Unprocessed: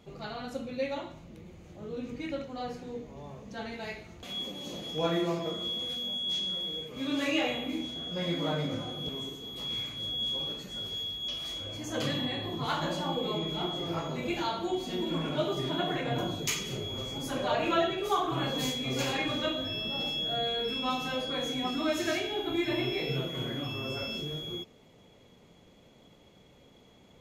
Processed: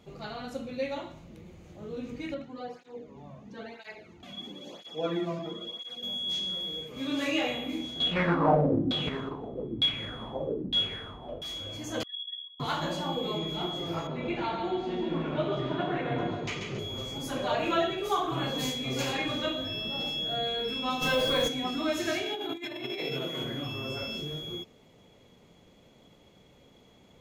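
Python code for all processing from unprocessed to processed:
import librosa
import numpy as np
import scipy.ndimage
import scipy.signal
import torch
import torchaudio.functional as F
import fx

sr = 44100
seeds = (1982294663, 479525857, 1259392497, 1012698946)

y = fx.chain(x, sr, fx.lowpass(hz=3300.0, slope=6),
    fx.flanger_cancel(hz=1.0, depth_ms=2.5), at=(2.34, 6.03))
y = fx.chain(y, sr, fx.halfwave_hold(),
    fx.peak_eq(hz=7200.0, db=-3.5, octaves=0.41),
    fx.filter_lfo_lowpass(shape='saw_down', hz=1.1, low_hz=250.0, high_hz=3800.0, q=4.4), at=(8.0, 11.42))
y = fx.chain(y, sr, fx.spec_expand(power=3.1),
    fx.steep_highpass(hz=1200.0, slope=72),
    fx.ensemble(), at=(12.03, 12.6))
y = fx.chain(y, sr, fx.lowpass(hz=2800.0, slope=12),
    fx.echo_feedback(ms=137, feedback_pct=42, wet_db=-5.5), at=(14.07, 16.79))
y = fx.dmg_noise_colour(y, sr, seeds[0], colour='pink', level_db=-51.0, at=(21.01, 21.47), fade=0.02)
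y = fx.comb(y, sr, ms=1.9, depth=0.32, at=(21.01, 21.47), fade=0.02)
y = fx.env_flatten(y, sr, amount_pct=50, at=(21.01, 21.47), fade=0.02)
y = fx.chain(y, sr, fx.highpass(hz=200.0, slope=12),
    fx.over_compress(threshold_db=-34.0, ratio=-0.5), at=(22.23, 23.44))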